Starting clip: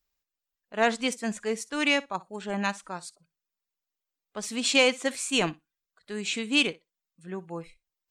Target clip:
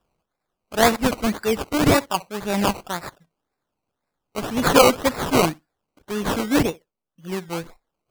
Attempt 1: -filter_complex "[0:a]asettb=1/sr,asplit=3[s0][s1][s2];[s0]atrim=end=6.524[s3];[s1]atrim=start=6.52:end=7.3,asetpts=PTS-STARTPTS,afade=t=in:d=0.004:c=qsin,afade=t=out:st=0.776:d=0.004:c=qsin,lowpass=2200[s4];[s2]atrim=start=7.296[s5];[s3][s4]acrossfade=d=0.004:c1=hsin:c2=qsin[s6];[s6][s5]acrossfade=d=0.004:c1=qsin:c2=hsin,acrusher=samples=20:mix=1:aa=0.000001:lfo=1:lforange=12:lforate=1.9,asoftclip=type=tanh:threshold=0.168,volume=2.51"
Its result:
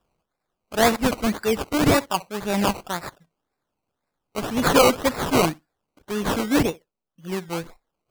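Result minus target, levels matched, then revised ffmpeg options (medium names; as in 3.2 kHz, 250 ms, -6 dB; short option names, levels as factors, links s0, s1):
saturation: distortion +16 dB
-filter_complex "[0:a]asettb=1/sr,asplit=3[s0][s1][s2];[s0]atrim=end=6.524[s3];[s1]atrim=start=6.52:end=7.3,asetpts=PTS-STARTPTS,afade=t=in:d=0.004:c=qsin,afade=t=out:st=0.776:d=0.004:c=qsin,lowpass=2200[s4];[s2]atrim=start=7.296[s5];[s3][s4]acrossfade=d=0.004:c1=hsin:c2=qsin[s6];[s6][s5]acrossfade=d=0.004:c1=qsin:c2=hsin,acrusher=samples=20:mix=1:aa=0.000001:lfo=1:lforange=12:lforate=1.9,asoftclip=type=tanh:threshold=0.531,volume=2.51"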